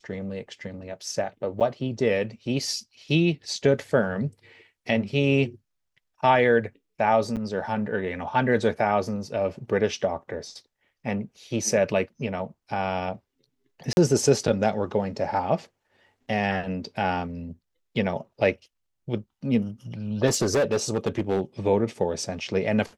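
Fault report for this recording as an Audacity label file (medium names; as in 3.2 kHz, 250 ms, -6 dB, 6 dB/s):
1.600000	1.610000	dropout 8.1 ms
7.360000	7.370000	dropout 8 ms
13.930000	13.970000	dropout 41 ms
20.260000	21.410000	clipped -18 dBFS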